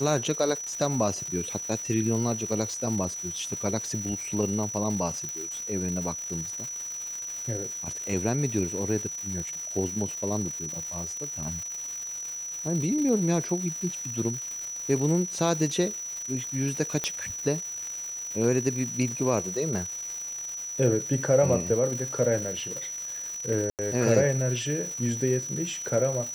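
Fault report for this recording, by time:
crackle 450 per s -34 dBFS
whine 5.9 kHz -33 dBFS
5.29 s: pop
17.04 s: pop -12 dBFS
23.70–23.79 s: dropout 88 ms

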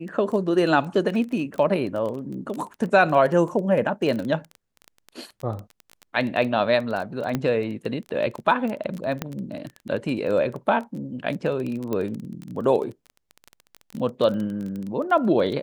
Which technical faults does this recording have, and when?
crackle 17 per s -28 dBFS
7.35 s: pop -11 dBFS
9.22 s: pop -12 dBFS
11.93 s: pop -15 dBFS

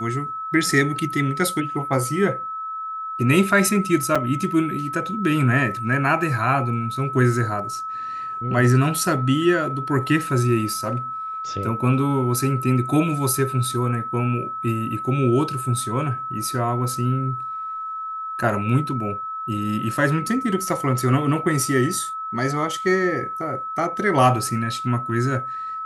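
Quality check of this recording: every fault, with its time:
whine 1.3 kHz -27 dBFS
4.15–4.16 s: dropout 5.1 ms

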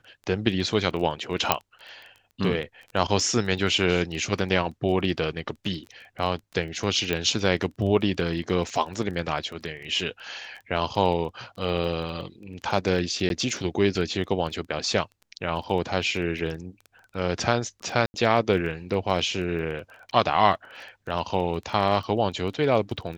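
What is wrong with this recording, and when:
crackle 15 per s -34 dBFS
1.52 s: pop -2 dBFS
7.13 s: pop -12 dBFS
13.29–13.30 s: dropout 12 ms
18.06–18.14 s: dropout 80 ms

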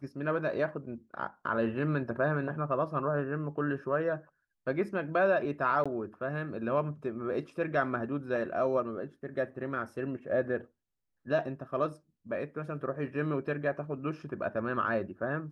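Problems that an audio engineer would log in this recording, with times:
5.84–5.86 s: dropout 16 ms

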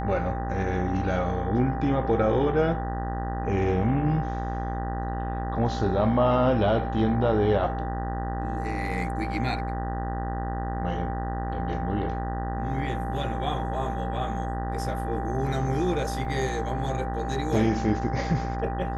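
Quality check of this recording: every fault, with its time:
buzz 60 Hz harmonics 32 -31 dBFS
whine 790 Hz -33 dBFS
16.25 s: dropout 2.9 ms

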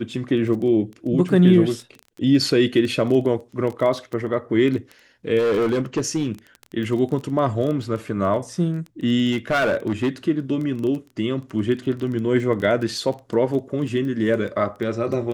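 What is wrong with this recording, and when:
crackle 12 per s -27 dBFS
5.38–6.28 s: clipped -16.5 dBFS
9.32–10.09 s: clipped -16 dBFS

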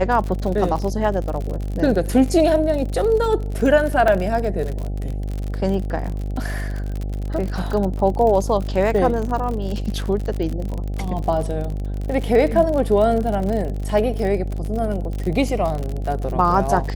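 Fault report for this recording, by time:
buzz 50 Hz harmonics 16 -25 dBFS
crackle 55 per s -25 dBFS
4.08 s: dropout 2.3 ms

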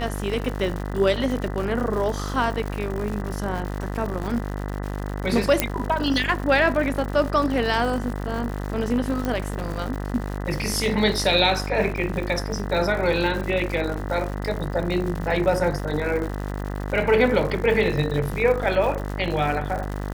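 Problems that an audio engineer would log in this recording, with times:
buzz 50 Hz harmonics 40 -29 dBFS
crackle 180 per s -30 dBFS
5.60 s: pop -2 dBFS
9.25 s: pop -13 dBFS

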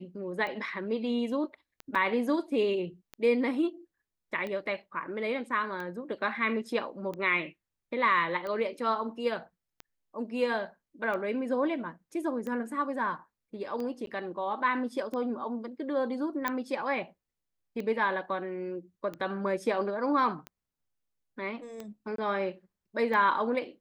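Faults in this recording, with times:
tick 45 rpm -25 dBFS
1.95 s: dropout 4.5 ms
14.06–14.07 s: dropout 12 ms
16.48 s: pop -14 dBFS
22.16–22.18 s: dropout 23 ms

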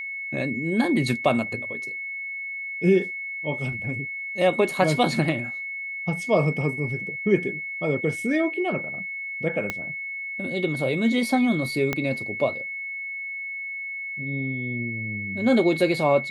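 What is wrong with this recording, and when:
whine 2.2 kHz -30 dBFS
9.70 s: pop -12 dBFS
11.93 s: pop -10 dBFS

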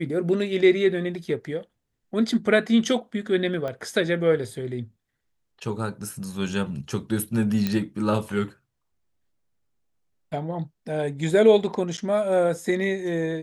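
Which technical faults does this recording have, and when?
3.68 s: pop -20 dBFS
7.67 s: pop -12 dBFS
11.97–11.98 s: dropout 9.2 ms

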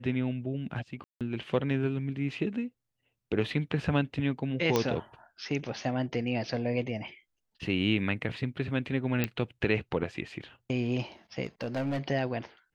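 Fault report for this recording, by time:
1.04–1.21 s: dropout 167 ms
4.76 s: pop -11 dBFS
9.24 s: pop -13 dBFS
11.45–11.98 s: clipped -27 dBFS

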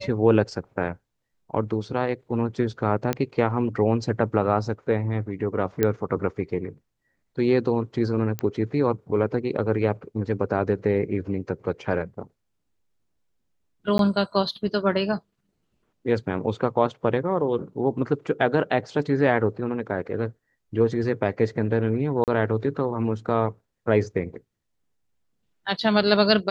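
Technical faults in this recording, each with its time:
3.13 s: pop -10 dBFS
5.83 s: pop -8 dBFS
8.39 s: pop -13 dBFS
13.98–13.99 s: dropout 12 ms
22.24–22.28 s: dropout 38 ms

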